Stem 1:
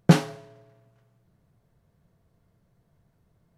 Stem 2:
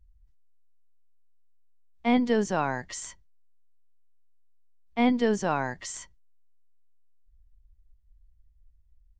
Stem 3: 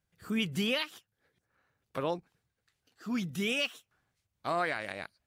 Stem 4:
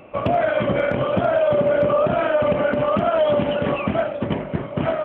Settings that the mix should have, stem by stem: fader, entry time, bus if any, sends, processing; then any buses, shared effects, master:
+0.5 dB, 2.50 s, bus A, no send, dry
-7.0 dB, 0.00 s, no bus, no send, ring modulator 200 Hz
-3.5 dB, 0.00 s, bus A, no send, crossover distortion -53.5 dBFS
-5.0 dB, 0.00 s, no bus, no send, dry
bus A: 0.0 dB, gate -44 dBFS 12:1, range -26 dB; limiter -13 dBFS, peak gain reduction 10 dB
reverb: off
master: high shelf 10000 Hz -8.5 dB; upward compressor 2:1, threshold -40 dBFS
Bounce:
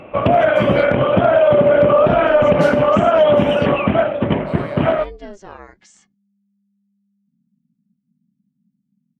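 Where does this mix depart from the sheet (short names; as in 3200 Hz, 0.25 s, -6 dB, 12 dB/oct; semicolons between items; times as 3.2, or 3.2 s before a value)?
stem 4 -5.0 dB -> +6.0 dB; master: missing upward compressor 2:1, threshold -40 dBFS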